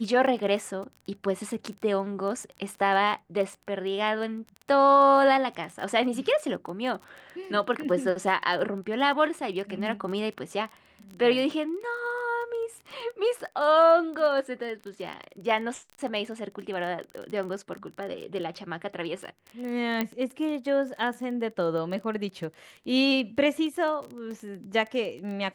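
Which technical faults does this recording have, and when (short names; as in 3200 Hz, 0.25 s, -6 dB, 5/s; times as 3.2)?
crackle 21/s -34 dBFS
20.01 pop -13 dBFS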